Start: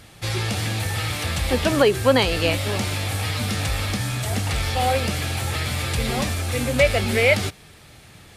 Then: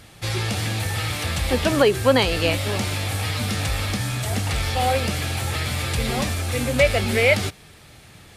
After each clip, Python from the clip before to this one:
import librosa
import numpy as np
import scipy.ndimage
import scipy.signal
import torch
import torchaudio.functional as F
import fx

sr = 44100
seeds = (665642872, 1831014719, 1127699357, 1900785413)

y = x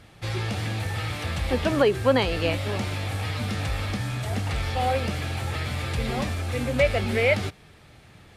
y = fx.high_shelf(x, sr, hz=4600.0, db=-11.0)
y = y * librosa.db_to_amplitude(-3.0)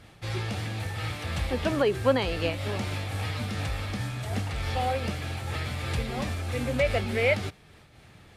y = fx.am_noise(x, sr, seeds[0], hz=5.7, depth_pct=55)